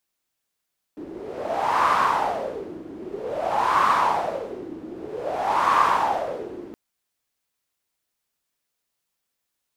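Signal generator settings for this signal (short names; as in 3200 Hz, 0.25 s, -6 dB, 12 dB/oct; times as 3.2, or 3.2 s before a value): wind-like swept noise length 5.77 s, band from 320 Hz, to 1100 Hz, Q 5.8, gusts 3, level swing 18 dB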